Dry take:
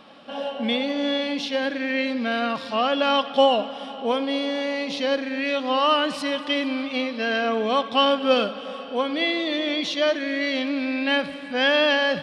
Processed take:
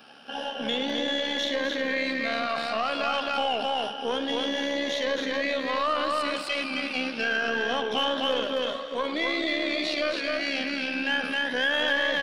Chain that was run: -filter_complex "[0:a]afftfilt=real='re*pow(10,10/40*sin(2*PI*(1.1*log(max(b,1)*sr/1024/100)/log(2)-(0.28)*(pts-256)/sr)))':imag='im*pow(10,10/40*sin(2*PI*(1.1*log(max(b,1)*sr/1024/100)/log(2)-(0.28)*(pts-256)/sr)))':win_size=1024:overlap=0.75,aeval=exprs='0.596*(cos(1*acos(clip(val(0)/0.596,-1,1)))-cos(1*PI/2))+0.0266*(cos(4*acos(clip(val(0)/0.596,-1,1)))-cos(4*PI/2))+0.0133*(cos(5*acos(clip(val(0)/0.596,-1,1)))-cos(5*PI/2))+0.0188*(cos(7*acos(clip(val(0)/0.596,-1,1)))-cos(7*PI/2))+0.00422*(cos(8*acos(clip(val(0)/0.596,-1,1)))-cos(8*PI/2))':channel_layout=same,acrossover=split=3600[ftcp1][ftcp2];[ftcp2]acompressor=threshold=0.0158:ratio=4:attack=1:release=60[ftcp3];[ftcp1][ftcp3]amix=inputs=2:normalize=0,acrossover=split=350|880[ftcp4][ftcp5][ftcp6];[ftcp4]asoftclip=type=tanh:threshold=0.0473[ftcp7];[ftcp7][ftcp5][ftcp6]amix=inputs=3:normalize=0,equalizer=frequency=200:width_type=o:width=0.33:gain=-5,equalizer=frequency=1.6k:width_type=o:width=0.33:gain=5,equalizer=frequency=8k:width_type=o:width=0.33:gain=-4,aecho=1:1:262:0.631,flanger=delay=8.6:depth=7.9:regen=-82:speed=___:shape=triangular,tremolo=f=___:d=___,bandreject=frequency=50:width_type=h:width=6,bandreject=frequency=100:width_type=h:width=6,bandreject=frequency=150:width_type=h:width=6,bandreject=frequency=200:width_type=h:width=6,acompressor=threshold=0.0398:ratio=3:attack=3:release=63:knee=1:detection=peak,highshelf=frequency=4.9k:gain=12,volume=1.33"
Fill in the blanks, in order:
1.8, 70, 0.462